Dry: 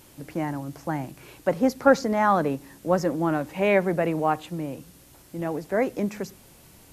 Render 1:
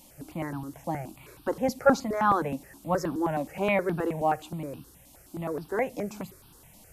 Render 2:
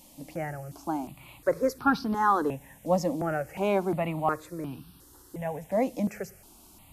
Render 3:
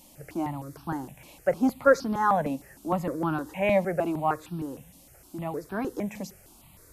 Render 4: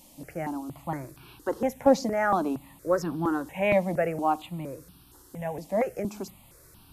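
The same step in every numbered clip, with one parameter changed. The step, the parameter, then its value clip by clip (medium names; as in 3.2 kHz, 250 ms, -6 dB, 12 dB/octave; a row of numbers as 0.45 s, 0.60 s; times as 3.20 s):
stepped phaser, rate: 9.5 Hz, 2.8 Hz, 6.5 Hz, 4.3 Hz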